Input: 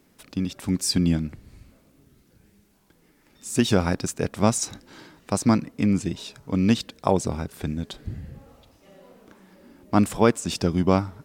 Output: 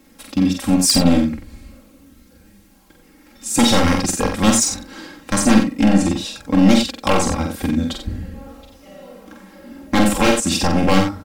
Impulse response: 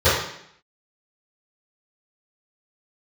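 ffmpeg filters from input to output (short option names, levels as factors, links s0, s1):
-af "aeval=exprs='0.141*(abs(mod(val(0)/0.141+3,4)-2)-1)':c=same,aecho=1:1:3.7:0.87,aecho=1:1:46.65|90.38:0.631|0.398,volume=2"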